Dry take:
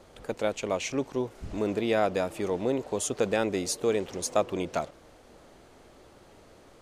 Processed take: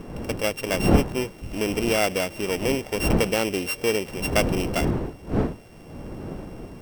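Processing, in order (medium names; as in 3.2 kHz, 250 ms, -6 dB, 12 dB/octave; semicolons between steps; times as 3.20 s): sorted samples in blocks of 16 samples; wind noise 320 Hz -31 dBFS; band-stop 3.6 kHz, Q 28; trim +3 dB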